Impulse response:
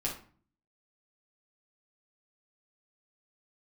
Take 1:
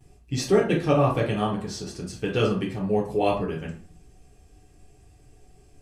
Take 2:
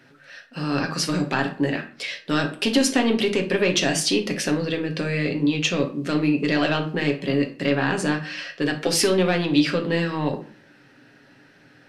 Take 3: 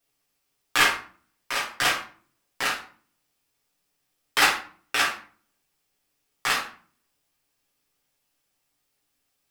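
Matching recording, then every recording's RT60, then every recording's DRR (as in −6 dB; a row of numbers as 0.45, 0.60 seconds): 3; 0.45, 0.45, 0.45 seconds; −14.5, 3.0, −5.5 decibels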